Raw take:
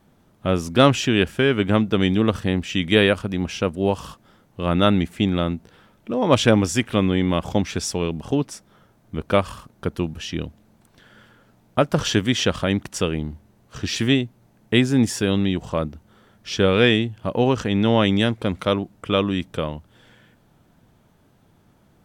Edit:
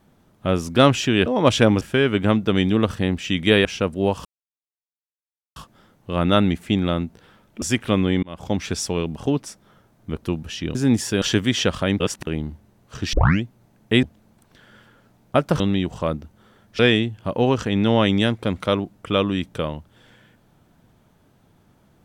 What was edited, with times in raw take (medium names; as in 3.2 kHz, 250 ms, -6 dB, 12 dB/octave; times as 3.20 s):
3.10–3.46 s: delete
4.06 s: insert silence 1.31 s
6.12–6.67 s: move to 1.26 s
7.28–7.68 s: fade in
9.28–9.94 s: delete
10.46–12.03 s: swap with 14.84–15.31 s
12.81–13.08 s: reverse
13.94 s: tape start 0.30 s
16.50–16.78 s: delete